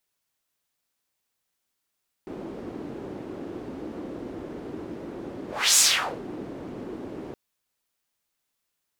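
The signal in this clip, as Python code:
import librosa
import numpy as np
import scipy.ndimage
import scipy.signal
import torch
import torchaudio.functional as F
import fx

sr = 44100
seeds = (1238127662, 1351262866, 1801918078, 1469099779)

y = fx.whoosh(sr, seeds[0], length_s=5.07, peak_s=3.5, rise_s=0.31, fall_s=0.46, ends_hz=330.0, peak_hz=7400.0, q=2.2, swell_db=20.0)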